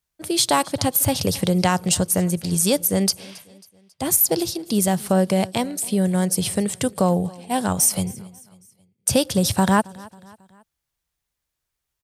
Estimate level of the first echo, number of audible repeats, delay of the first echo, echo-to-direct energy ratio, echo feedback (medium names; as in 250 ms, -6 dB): -22.5 dB, 2, 272 ms, -21.5 dB, 48%